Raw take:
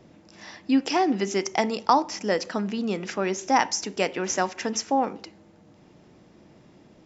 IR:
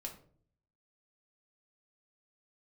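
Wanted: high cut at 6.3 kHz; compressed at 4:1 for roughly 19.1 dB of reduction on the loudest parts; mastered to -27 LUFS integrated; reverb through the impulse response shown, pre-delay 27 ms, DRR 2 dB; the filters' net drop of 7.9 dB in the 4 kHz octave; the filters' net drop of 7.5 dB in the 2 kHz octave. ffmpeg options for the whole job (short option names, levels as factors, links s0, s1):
-filter_complex "[0:a]lowpass=6300,equalizer=f=2000:t=o:g=-7,equalizer=f=4000:t=o:g=-8.5,acompressor=threshold=0.01:ratio=4,asplit=2[s0][s1];[1:a]atrim=start_sample=2205,adelay=27[s2];[s1][s2]afir=irnorm=-1:irlink=0,volume=1.06[s3];[s0][s3]amix=inputs=2:normalize=0,volume=4.22"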